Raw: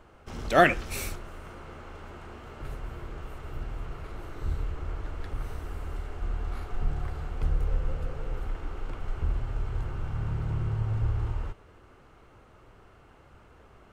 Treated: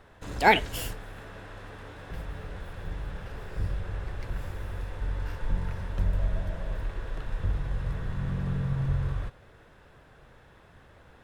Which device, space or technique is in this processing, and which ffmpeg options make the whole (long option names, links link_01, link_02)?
nightcore: -af "asetrate=54684,aresample=44100"